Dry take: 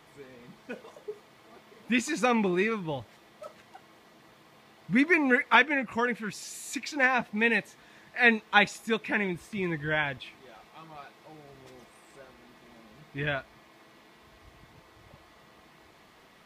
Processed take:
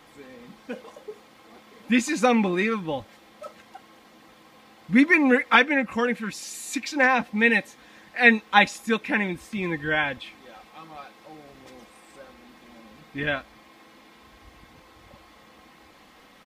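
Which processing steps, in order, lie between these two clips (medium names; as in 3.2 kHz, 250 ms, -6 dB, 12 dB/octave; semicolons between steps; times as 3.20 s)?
comb 3.8 ms, depth 48%; trim +3.5 dB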